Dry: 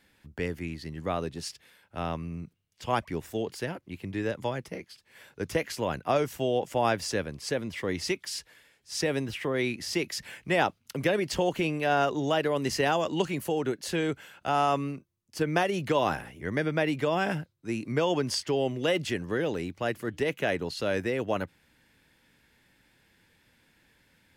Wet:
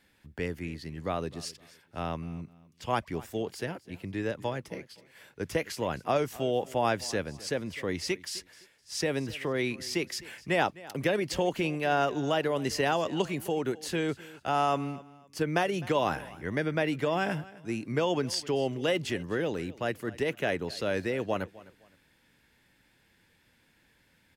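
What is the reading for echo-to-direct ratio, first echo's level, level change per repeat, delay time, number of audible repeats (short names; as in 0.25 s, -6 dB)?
-19.5 dB, -20.0 dB, -11.5 dB, 0.257 s, 2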